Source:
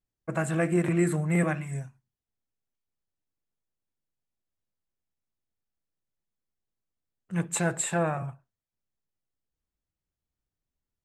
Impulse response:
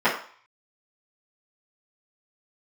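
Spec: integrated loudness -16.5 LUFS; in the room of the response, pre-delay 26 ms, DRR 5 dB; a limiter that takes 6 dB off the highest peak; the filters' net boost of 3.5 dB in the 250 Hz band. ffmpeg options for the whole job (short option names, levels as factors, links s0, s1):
-filter_complex "[0:a]equalizer=f=250:t=o:g=7,alimiter=limit=0.15:level=0:latency=1,asplit=2[s0][s1];[1:a]atrim=start_sample=2205,adelay=26[s2];[s1][s2]afir=irnorm=-1:irlink=0,volume=0.0631[s3];[s0][s3]amix=inputs=2:normalize=0,volume=3.16"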